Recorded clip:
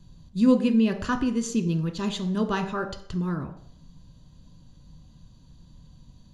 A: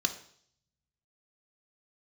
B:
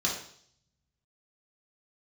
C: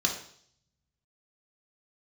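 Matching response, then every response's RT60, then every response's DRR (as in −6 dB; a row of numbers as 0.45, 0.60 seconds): A; 0.60, 0.60, 0.60 seconds; 6.5, −3.5, 1.0 decibels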